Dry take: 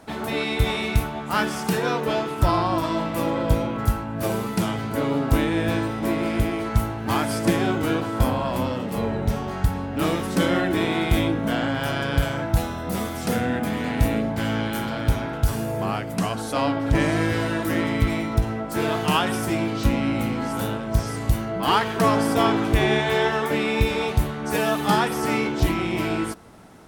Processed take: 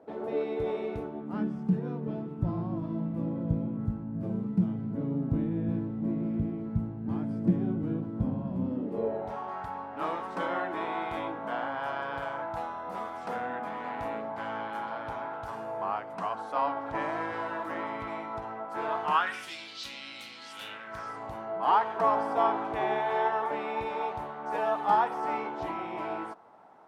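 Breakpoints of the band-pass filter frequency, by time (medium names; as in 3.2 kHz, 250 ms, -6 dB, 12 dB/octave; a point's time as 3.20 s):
band-pass filter, Q 2.3
0.94 s 460 Hz
1.57 s 180 Hz
8.60 s 180 Hz
9.38 s 950 Hz
19.10 s 950 Hz
19.55 s 4.1 kHz
20.43 s 4.1 kHz
21.24 s 850 Hz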